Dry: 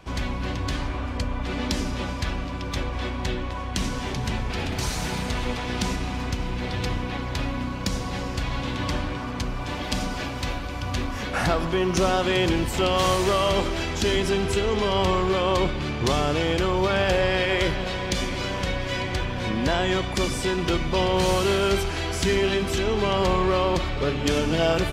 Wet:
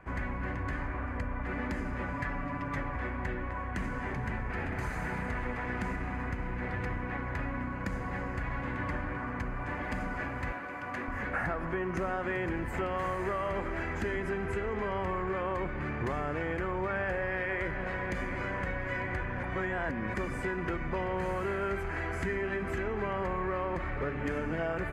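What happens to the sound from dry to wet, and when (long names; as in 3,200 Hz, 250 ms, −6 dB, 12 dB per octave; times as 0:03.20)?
0:02.13–0:02.96: comb filter 7 ms, depth 76%
0:10.52–0:11.08: Bessel high-pass filter 270 Hz
0:19.43–0:20.14: reverse
whole clip: high shelf with overshoot 2,600 Hz −12 dB, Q 3; notch filter 5,600 Hz, Q 8.9; downward compressor 4 to 1, threshold −24 dBFS; level −6 dB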